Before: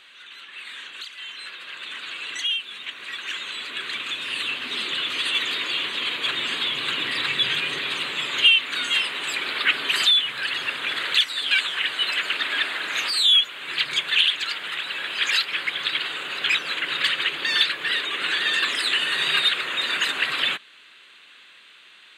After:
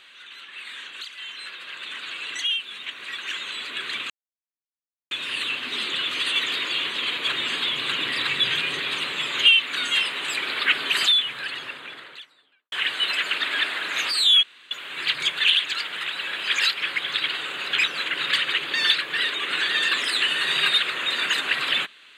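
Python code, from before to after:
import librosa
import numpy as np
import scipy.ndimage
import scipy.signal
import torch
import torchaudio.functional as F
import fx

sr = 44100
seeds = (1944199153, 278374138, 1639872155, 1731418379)

y = fx.studio_fade_out(x, sr, start_s=9.92, length_s=1.79)
y = fx.edit(y, sr, fx.insert_silence(at_s=4.1, length_s=1.01),
    fx.insert_room_tone(at_s=13.42, length_s=0.28), tone=tone)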